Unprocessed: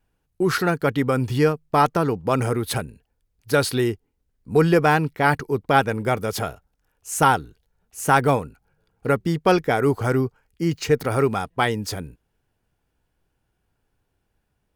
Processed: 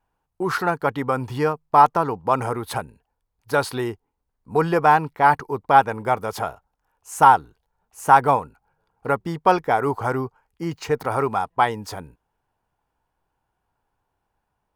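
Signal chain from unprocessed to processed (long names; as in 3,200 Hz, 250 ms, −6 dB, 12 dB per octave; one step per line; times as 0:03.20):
parametric band 930 Hz +14.5 dB 1.1 octaves
level −6.5 dB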